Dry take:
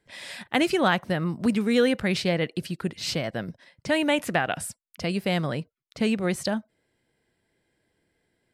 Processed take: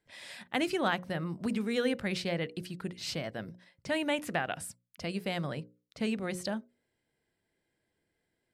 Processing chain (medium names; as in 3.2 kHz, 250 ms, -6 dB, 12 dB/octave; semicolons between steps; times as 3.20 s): hum notches 60/120/180/240/300/360/420/480/540 Hz; trim -7.5 dB